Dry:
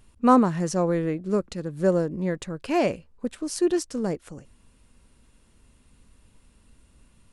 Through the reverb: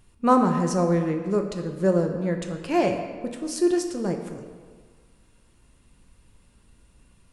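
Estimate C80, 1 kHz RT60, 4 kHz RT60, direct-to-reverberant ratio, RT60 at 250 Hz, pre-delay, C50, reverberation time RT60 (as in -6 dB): 8.0 dB, 1.7 s, 1.1 s, 3.5 dB, 1.5 s, 3 ms, 6.5 dB, 1.7 s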